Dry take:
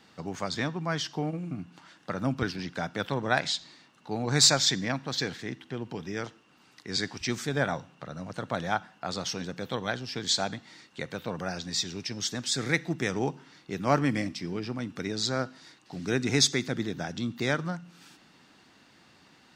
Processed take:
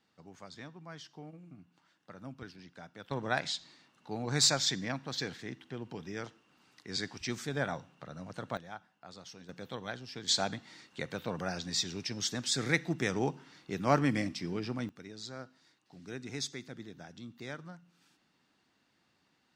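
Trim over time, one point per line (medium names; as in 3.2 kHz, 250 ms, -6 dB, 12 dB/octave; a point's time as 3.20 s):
-17 dB
from 3.11 s -6 dB
from 8.57 s -17 dB
from 9.49 s -9 dB
from 10.28 s -2.5 dB
from 14.89 s -15 dB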